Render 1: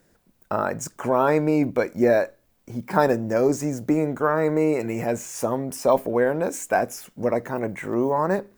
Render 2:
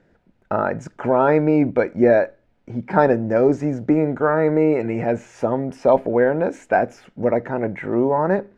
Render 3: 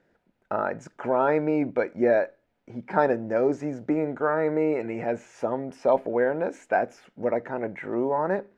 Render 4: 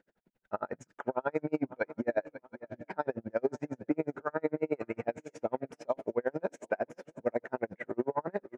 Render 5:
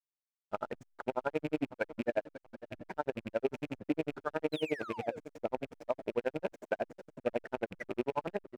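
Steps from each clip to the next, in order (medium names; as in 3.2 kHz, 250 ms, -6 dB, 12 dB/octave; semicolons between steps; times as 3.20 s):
low-pass 2.4 kHz 12 dB/octave; band-stop 1.1 kHz, Q 6.1; trim +4 dB
bass shelf 180 Hz -11 dB; trim -5 dB
peak limiter -16.5 dBFS, peak gain reduction 9.5 dB; shuffle delay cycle 722 ms, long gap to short 3:1, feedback 40%, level -16 dB; logarithmic tremolo 11 Hz, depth 40 dB
rattle on loud lows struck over -39 dBFS, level -30 dBFS; painted sound fall, 4.52–5.19 s, 430–4200 Hz -42 dBFS; hysteresis with a dead band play -44.5 dBFS; trim -2 dB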